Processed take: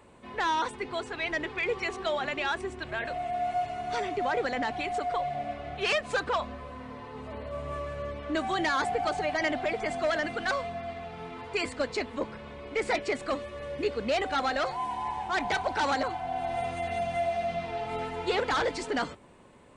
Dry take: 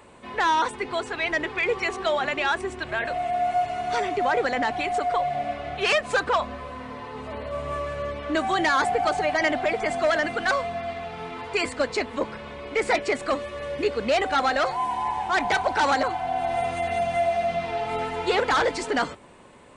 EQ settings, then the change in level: dynamic bell 3.9 kHz, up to +3 dB, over -36 dBFS, Q 0.71; bass shelf 420 Hz +5 dB; -7.5 dB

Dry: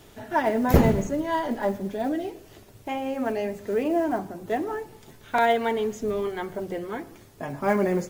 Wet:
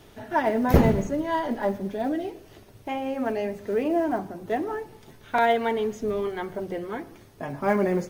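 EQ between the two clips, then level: treble shelf 6.2 kHz -4.5 dB; band-stop 7.3 kHz, Q 8.4; 0.0 dB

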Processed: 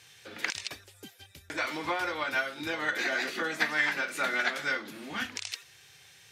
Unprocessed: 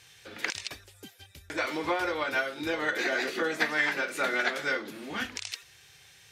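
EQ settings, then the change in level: dynamic bell 430 Hz, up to -7 dB, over -46 dBFS, Q 1.4; high-pass 86 Hz; 0.0 dB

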